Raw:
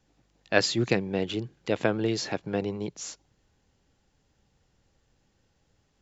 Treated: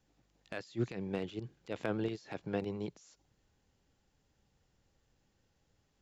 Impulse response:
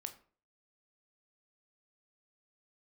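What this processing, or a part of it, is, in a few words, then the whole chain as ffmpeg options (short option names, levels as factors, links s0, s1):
de-esser from a sidechain: -filter_complex "[0:a]asplit=2[s0][s1];[s1]highpass=f=5000:w=0.5412,highpass=f=5000:w=1.3066,apad=whole_len=265041[s2];[s0][s2]sidechaincompress=threshold=0.002:ratio=6:attack=0.69:release=60,volume=0.531"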